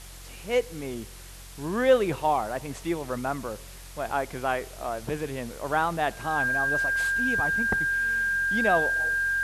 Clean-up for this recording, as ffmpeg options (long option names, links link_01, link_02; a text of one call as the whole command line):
ffmpeg -i in.wav -af "bandreject=frequency=45:width_type=h:width=4,bandreject=frequency=90:width_type=h:width=4,bandreject=frequency=135:width_type=h:width=4,bandreject=frequency=180:width_type=h:width=4,bandreject=frequency=1600:width=30,afwtdn=0.005" out.wav